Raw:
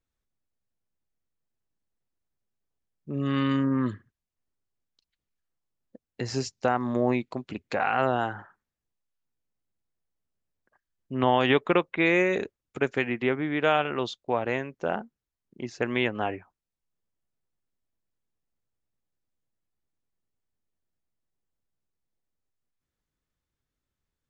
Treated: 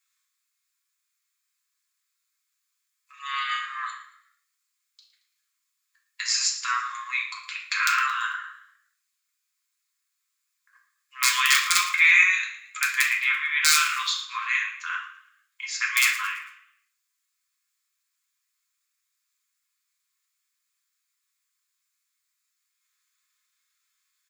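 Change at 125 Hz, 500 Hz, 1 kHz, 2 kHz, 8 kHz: under -40 dB, under -40 dB, 0.0 dB, +9.5 dB, n/a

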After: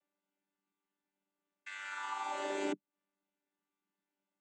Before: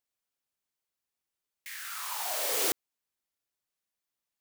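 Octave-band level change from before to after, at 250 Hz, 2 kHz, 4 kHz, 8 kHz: +5.5, -2.5, -12.5, -19.5 dB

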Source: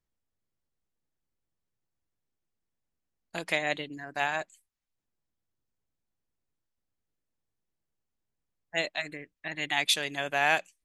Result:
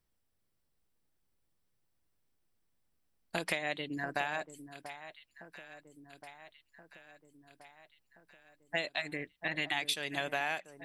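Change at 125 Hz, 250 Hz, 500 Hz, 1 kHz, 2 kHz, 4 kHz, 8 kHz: -1.5, -1.0, -4.5, -6.0, -5.5, -6.0, -8.0 dB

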